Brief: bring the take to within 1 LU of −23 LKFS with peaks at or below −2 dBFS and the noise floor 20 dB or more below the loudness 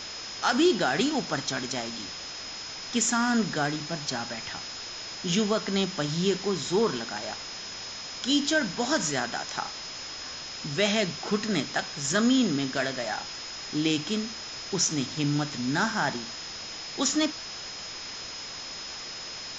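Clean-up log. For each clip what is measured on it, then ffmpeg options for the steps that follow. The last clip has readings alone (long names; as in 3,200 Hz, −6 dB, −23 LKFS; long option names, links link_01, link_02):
interfering tone 5,100 Hz; level of the tone −39 dBFS; background noise floor −39 dBFS; target noise floor −49 dBFS; integrated loudness −28.5 LKFS; sample peak −9.5 dBFS; target loudness −23.0 LKFS
→ -af "bandreject=frequency=5100:width=30"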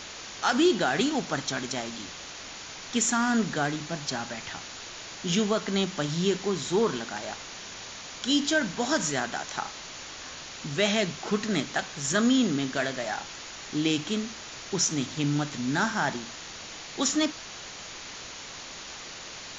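interfering tone none found; background noise floor −42 dBFS; target noise floor −49 dBFS
→ -af "afftdn=noise_reduction=7:noise_floor=-42"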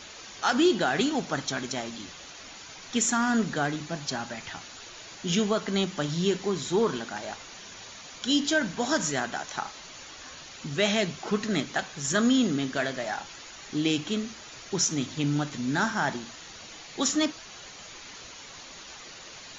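background noise floor −45 dBFS; target noise floor −48 dBFS
→ -af "afftdn=noise_reduction=6:noise_floor=-45"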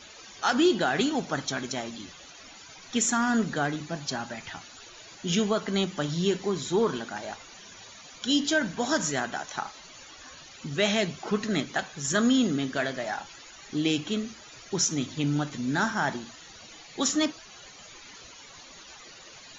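background noise floor −49 dBFS; integrated loudness −28.0 LKFS; sample peak −11.0 dBFS; target loudness −23.0 LKFS
→ -af "volume=5dB"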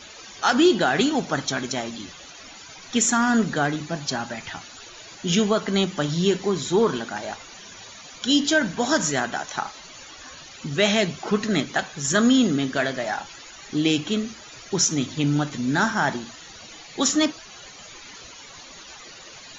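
integrated loudness −23.0 LKFS; sample peak −6.0 dBFS; background noise floor −44 dBFS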